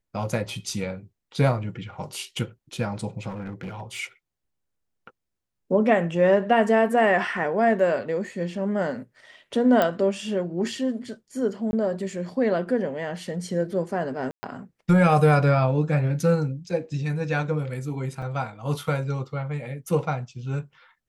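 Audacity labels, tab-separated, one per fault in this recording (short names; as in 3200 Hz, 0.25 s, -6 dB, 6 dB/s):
3.280000	4.000000	clipped -30 dBFS
9.820000	9.820000	pop -9 dBFS
11.710000	11.730000	gap 21 ms
14.310000	14.430000	gap 0.12 s
18.220000	18.220000	gap 3.9 ms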